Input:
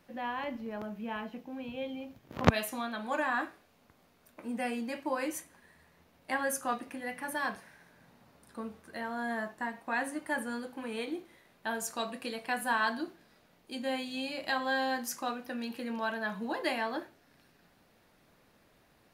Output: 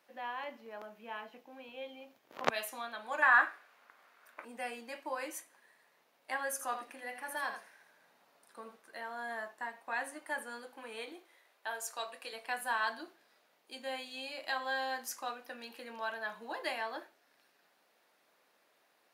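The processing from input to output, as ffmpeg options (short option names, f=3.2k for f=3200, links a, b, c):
-filter_complex "[0:a]asettb=1/sr,asplit=3[a][b][c];[a]atrim=end=3.224[d];[b]atrim=start=3.22:end=4.45,asetpts=PTS-STARTPTS,afade=t=in:d=0.004:c=qsin,afade=t=out:st=1.226:d=0.004:c=qsin,equalizer=f=1.5k:t=o:w=1.6:g=13.5[e];[c]atrim=start=4.446[f];[d][e]acrossfade=d=0.004:c1=hsin:c2=qsin[g];[g][f]acrossfade=d=0.004:c1=qsin:c2=hsin,asettb=1/sr,asplit=3[h][i][j];[h]atrim=end=6.514[k];[i]atrim=start=6.51:end=8.76,asetpts=PTS-STARTPTS,afade=t=in:d=0.004:c=qsin,afade=t=out:st=2.246:d=0.004:c=qsin,aecho=1:1:81:0.376,atrim=end_sample=99225[l];[j]atrim=start=8.756[m];[k][l]acrossfade=d=0.004:c1=hsin:c2=qsin[n];[n][m]acrossfade=d=0.004:c1=qsin:c2=hsin,asettb=1/sr,asplit=3[o][p][q];[o]atrim=end=11.124[r];[p]atrim=start=11.12:end=12.33,asetpts=PTS-STARTPTS,afade=t=in:d=0.004:c=qsin,afade=t=out:st=1.206:d=0.004:c=qsin,highpass=360[s];[q]atrim=start=12.326[t];[r][s]acrossfade=d=0.004:c1=hsin:c2=qsin[u];[u][t]acrossfade=d=0.004:c1=qsin:c2=hsin,highpass=500,volume=-3.5dB"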